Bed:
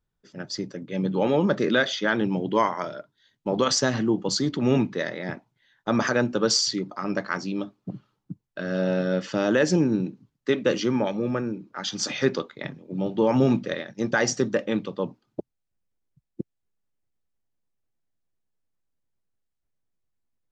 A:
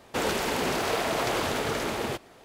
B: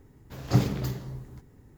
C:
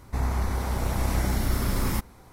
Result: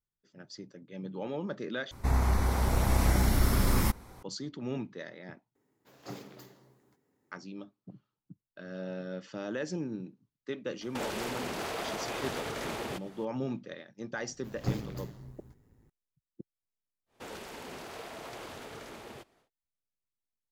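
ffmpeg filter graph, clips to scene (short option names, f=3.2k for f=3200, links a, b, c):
-filter_complex "[2:a]asplit=2[a][b];[1:a]asplit=2[c][d];[0:a]volume=-14.5dB[e];[a]highpass=290[f];[c]alimiter=limit=-24dB:level=0:latency=1:release=143[g];[b]tremolo=f=110:d=0.519[h];[e]asplit=3[i][j][k];[i]atrim=end=1.914[l];[3:a]atrim=end=2.32[m];[j]atrim=start=4.226:end=5.554[n];[f]atrim=end=1.77,asetpts=PTS-STARTPTS,volume=-13dB[o];[k]atrim=start=7.316[p];[g]atrim=end=2.44,asetpts=PTS-STARTPTS,volume=-3dB,afade=t=in:d=0.004:c=hsin,afade=t=out:st=2.436:d=0.004:c=hsin,adelay=10810[q];[h]atrim=end=1.77,asetpts=PTS-STARTPTS,volume=-7.5dB,afade=t=in:d=0.004:c=hsin,afade=t=out:st=1.766:d=0.004:c=hsin,adelay=14130[r];[d]atrim=end=2.44,asetpts=PTS-STARTPTS,volume=-16.5dB,afade=t=in:d=0.1,afade=t=out:st=2.34:d=0.1,adelay=17060[s];[l][m]acrossfade=d=0.004:c1=hsin:c2=hsin[t];[t][n]acrossfade=d=0.004:c1=hsin:c2=hsin[u];[u][o]acrossfade=d=0.004:c1=hsin:c2=hsin[v];[v][p]acrossfade=d=0.004:c1=hsin:c2=hsin[w];[w][q][r][s]amix=inputs=4:normalize=0"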